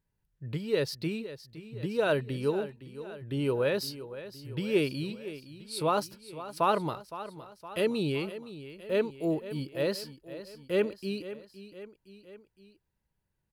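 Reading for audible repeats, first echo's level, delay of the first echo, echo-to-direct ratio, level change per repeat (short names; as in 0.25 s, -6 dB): 3, -14.0 dB, 0.514 s, -12.5 dB, -4.5 dB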